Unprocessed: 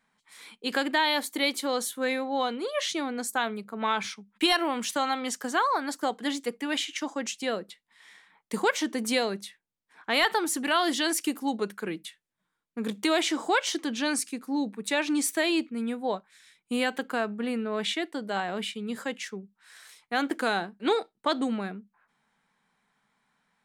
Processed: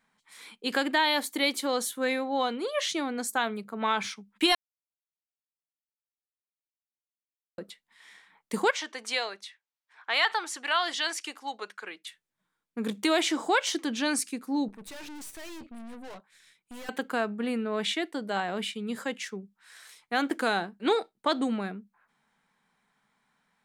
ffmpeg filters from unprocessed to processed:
-filter_complex "[0:a]asettb=1/sr,asplit=3[s0][s1][s2];[s0]atrim=end=8.714[s3];[s1]atrim=start=8.71:end=12.07,asetpts=PTS-STARTPTS,afade=t=in:d=0.004:c=qsin,afade=t=out:st=3.356:d=0.004:c=qsin,highpass=790,lowpass=6100[s4];[s2]atrim=start=12.066[s5];[s3][s4]acrossfade=d=0.004:c1=hsin:c2=qsin[s6];[s6][s5]acrossfade=d=0.004:c1=qsin:c2=hsin,asettb=1/sr,asplit=3[s7][s8][s9];[s7]atrim=end=14.684[s10];[s8]atrim=start=14.68:end=16.89,asetpts=PTS-STARTPTS,afade=t=in:d=0.004:c=qsin,afade=t=out:st=2.206:d=0.004:c=qsin,aeval=exprs='(tanh(126*val(0)+0.6)-tanh(0.6))/126':c=same[s11];[s9]atrim=start=16.886[s12];[s10][s11]acrossfade=d=0.004:c1=hsin:c2=qsin[s13];[s13][s12]acrossfade=d=0.004:c1=qsin:c2=hsin,asplit=3[s14][s15][s16];[s14]atrim=end=4.55,asetpts=PTS-STARTPTS,afade=t=out:st=4.546:d=0.004:c=hsin[s17];[s15]atrim=start=4.55:end=7.58,asetpts=PTS-STARTPTS,volume=0[s18];[s16]atrim=start=7.58,asetpts=PTS-STARTPTS,afade=t=in:d=0.004:c=hsin[s19];[s17][s18][s19]concat=n=3:v=0:a=1"

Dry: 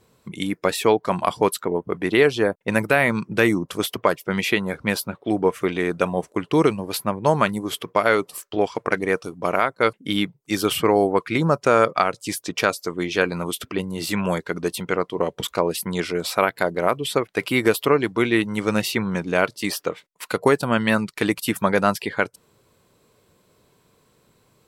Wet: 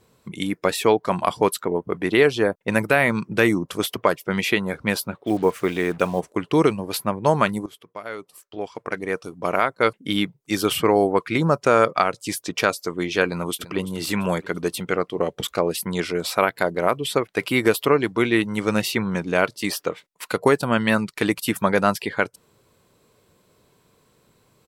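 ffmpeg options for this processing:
-filter_complex "[0:a]asplit=3[s0][s1][s2];[s0]afade=t=out:st=5.26:d=0.02[s3];[s1]acrusher=bits=6:mix=0:aa=0.5,afade=t=in:st=5.26:d=0.02,afade=t=out:st=6.19:d=0.02[s4];[s2]afade=t=in:st=6.19:d=0.02[s5];[s3][s4][s5]amix=inputs=3:normalize=0,asplit=2[s6][s7];[s7]afade=t=in:st=13.25:d=0.01,afade=t=out:st=13.93:d=0.01,aecho=0:1:340|680|1020|1360:0.16788|0.0671522|0.0268609|0.0107443[s8];[s6][s8]amix=inputs=2:normalize=0,asettb=1/sr,asplit=3[s9][s10][s11];[s9]atrim=end=14.764[s12];[s10]atrim=start=14.76:end=15.68,asetpts=PTS-STARTPTS,afade=t=in:d=0.004:c=qsin,afade=t=out:st=0.916:d=0.004:c=qsin,bandreject=f=970:w=7.8[s13];[s11]atrim=start=15.676[s14];[s12][s13]acrossfade=d=0.004:c1=hsin:c2=qsin[s15];[s15][s14]acrossfade=d=0.004:c1=qsin:c2=hsin,asplit=2[s16][s17];[s16]atrim=end=7.66,asetpts=PTS-STARTPTS,afade=t=out:st=7.656:d=0.004:c=hsin:silence=0.133352[s18];[s17]atrim=start=7.66,asetpts=PTS-STARTPTS,afade=t=in:d=1.95:c=qua:silence=0.133352[s19];[s18][s19]concat=n=2:v=0:a=1"

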